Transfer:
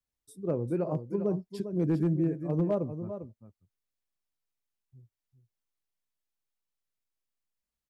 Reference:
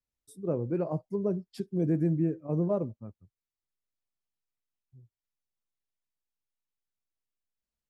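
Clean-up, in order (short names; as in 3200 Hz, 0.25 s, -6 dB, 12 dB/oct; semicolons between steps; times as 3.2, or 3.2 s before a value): clip repair -19.5 dBFS; inverse comb 0.399 s -10 dB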